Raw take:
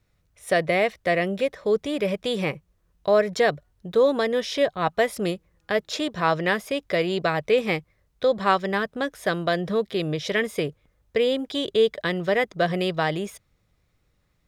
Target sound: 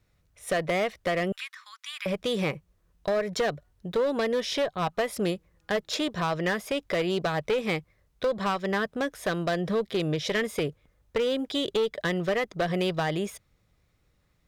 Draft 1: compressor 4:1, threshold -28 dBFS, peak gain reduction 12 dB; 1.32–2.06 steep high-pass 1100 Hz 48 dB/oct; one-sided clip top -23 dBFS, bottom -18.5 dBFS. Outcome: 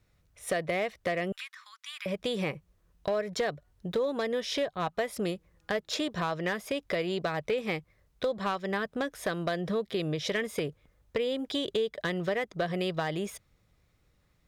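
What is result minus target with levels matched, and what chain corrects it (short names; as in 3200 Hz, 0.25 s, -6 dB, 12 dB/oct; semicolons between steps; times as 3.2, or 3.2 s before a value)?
compressor: peak gain reduction +5 dB
compressor 4:1, threshold -21.5 dBFS, peak gain reduction 7 dB; 1.32–2.06 steep high-pass 1100 Hz 48 dB/oct; one-sided clip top -23 dBFS, bottom -18.5 dBFS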